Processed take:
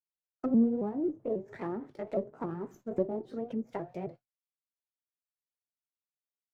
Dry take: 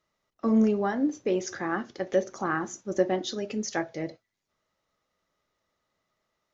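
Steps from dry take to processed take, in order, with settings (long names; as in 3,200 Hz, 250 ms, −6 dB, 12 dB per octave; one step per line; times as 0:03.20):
pitch shifter swept by a sawtooth +3.5 semitones, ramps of 271 ms
downward expander −42 dBFS
octave-band graphic EQ 125/2,000/4,000 Hz +8/−4/−4 dB
treble cut that deepens with the level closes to 580 Hz, closed at −26 dBFS
windowed peak hold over 3 samples
level −4 dB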